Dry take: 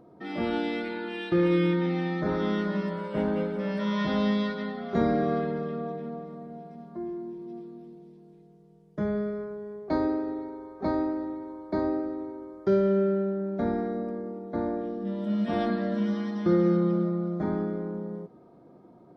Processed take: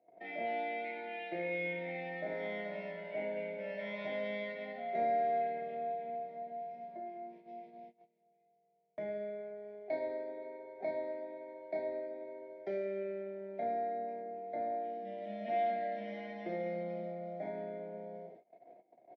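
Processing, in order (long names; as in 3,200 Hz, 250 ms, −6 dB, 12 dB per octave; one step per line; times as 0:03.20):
peak hold with a decay on every bin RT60 0.41 s
pair of resonant band-passes 1,200 Hz, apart 1.7 octaves
on a send: reverse bouncing-ball delay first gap 30 ms, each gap 1.1×, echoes 5
on the sum: noise gate −59 dBFS, range −21 dB
multiband upward and downward compressor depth 40%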